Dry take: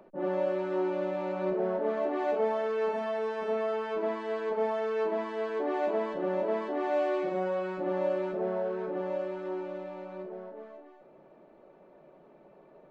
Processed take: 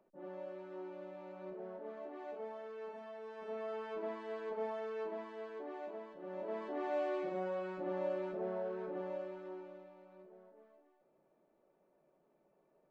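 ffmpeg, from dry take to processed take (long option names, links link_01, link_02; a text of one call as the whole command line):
ffmpeg -i in.wav -af "volume=1dB,afade=type=in:start_time=3.22:duration=0.58:silence=0.446684,afade=type=out:start_time=4.68:duration=1.49:silence=0.354813,afade=type=in:start_time=6.17:duration=0.6:silence=0.281838,afade=type=out:start_time=8.99:duration=0.96:silence=0.334965" out.wav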